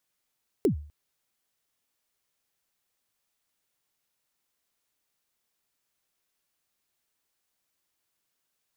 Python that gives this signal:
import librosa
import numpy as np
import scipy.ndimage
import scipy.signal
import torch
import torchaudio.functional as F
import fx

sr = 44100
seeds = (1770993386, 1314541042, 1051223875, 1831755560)

y = fx.drum_kick(sr, seeds[0], length_s=0.25, level_db=-16.0, start_hz=460.0, end_hz=74.0, sweep_ms=105.0, decay_s=0.45, click=True)